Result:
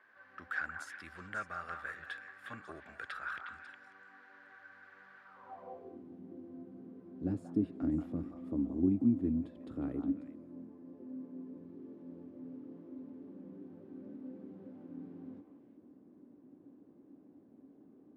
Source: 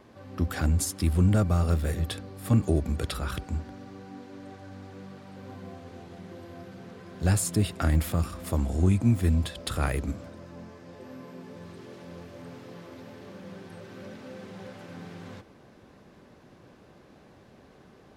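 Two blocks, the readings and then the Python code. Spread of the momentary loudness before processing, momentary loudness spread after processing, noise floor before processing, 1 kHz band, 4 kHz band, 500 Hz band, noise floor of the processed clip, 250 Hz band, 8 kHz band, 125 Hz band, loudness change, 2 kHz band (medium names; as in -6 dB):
21 LU, 24 LU, -55 dBFS, -8.0 dB, under -15 dB, -12.0 dB, -61 dBFS, -5.0 dB, under -25 dB, -20.5 dB, -13.0 dB, -2.0 dB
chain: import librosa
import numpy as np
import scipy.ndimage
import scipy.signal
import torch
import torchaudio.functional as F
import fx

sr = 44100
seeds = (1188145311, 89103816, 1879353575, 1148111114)

y = fx.filter_sweep_bandpass(x, sr, from_hz=1600.0, to_hz=280.0, start_s=5.22, end_s=6.0, q=6.4)
y = fx.echo_stepped(y, sr, ms=181, hz=970.0, octaves=1.4, feedback_pct=70, wet_db=-2.5)
y = y * librosa.db_to_amplitude(5.0)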